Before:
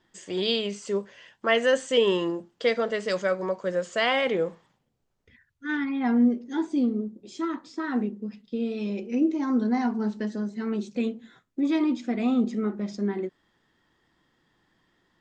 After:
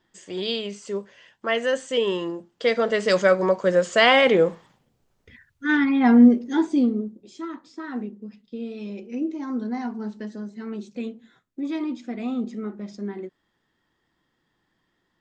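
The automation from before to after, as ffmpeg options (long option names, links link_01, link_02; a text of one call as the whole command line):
ffmpeg -i in.wav -af "volume=8dB,afade=type=in:start_time=2.48:duration=0.71:silence=0.334965,afade=type=out:start_time=6.33:duration=1.01:silence=0.251189" out.wav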